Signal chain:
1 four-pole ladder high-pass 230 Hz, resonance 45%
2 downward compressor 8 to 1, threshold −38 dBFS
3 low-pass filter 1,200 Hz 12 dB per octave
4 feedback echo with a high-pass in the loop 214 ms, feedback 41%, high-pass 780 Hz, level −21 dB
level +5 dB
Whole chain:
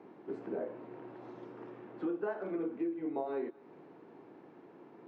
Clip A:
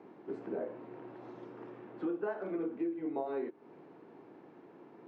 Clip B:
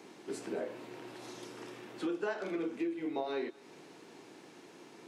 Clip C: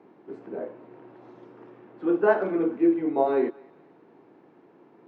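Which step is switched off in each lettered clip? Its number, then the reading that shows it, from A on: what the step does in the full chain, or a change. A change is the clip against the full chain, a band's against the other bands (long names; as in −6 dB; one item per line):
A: 4, echo-to-direct ratio −22.0 dB to none audible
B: 3, 2 kHz band +6.5 dB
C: 2, average gain reduction 5.0 dB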